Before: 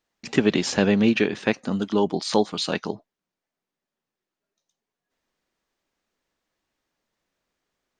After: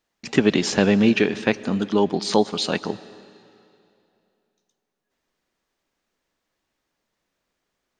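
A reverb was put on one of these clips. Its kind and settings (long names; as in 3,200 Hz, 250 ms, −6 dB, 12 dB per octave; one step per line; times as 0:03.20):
comb and all-pass reverb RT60 2.7 s, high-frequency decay 0.9×, pre-delay 75 ms, DRR 17.5 dB
level +2 dB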